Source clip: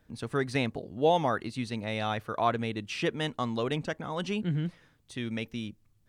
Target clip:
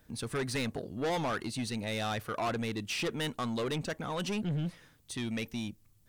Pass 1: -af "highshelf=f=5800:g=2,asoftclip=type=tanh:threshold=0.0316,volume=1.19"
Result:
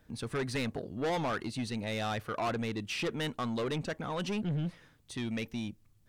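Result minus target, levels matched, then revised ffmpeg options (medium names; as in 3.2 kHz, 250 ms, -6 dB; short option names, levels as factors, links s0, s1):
8 kHz band -4.0 dB
-af "highshelf=f=5800:g=11,asoftclip=type=tanh:threshold=0.0316,volume=1.19"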